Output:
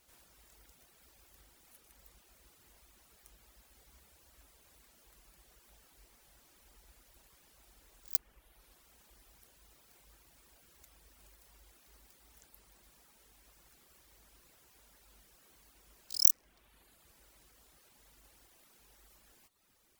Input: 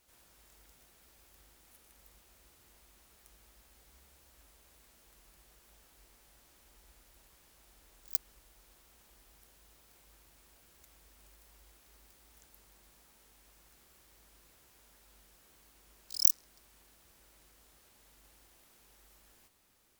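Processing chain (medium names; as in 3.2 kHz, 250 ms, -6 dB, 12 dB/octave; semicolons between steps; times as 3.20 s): reverb removal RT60 0.96 s; in parallel at -12 dB: hard clipper -19 dBFS, distortion -5 dB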